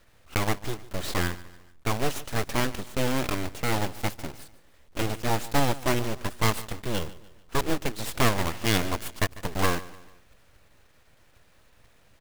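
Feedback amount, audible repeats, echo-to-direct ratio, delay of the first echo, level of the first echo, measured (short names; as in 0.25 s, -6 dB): 43%, 3, -17.5 dB, 0.147 s, -18.5 dB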